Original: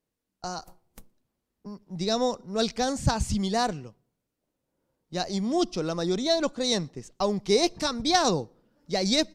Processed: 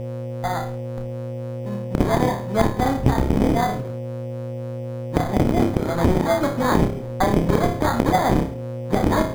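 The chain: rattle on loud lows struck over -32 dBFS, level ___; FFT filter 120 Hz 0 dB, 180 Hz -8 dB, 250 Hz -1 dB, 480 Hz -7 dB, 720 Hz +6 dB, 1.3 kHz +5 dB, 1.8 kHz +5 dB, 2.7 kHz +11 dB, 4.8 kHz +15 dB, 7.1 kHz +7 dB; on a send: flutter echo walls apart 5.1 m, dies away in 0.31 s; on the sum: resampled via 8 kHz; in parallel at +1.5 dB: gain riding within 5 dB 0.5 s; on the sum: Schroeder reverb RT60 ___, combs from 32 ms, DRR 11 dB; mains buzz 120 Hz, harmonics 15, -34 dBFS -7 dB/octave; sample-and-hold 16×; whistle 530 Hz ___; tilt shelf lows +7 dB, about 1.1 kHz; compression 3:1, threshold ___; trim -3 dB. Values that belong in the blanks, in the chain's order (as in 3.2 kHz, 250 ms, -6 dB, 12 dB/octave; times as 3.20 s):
-14 dBFS, 0.31 s, -33 dBFS, -13 dBFS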